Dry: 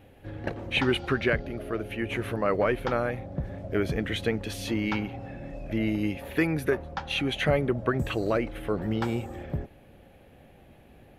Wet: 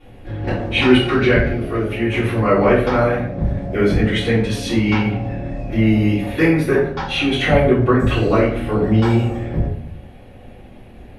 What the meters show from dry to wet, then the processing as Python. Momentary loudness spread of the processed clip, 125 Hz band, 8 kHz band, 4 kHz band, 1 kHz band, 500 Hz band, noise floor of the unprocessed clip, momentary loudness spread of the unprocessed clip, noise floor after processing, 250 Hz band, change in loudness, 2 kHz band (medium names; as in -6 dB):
9 LU, +13.5 dB, +7.5 dB, +9.5 dB, +10.5 dB, +11.0 dB, -54 dBFS, 11 LU, -40 dBFS, +12.5 dB, +11.5 dB, +9.5 dB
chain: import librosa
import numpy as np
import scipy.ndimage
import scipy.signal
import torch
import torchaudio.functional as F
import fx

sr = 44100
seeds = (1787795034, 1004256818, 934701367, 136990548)

y = scipy.signal.sosfilt(scipy.signal.butter(4, 11000.0, 'lowpass', fs=sr, output='sos'), x)
y = fx.notch(y, sr, hz=7100.0, q=24.0)
y = fx.room_shoebox(y, sr, seeds[0], volume_m3=84.0, walls='mixed', distance_m=3.4)
y = F.gain(torch.from_numpy(y), -3.0).numpy()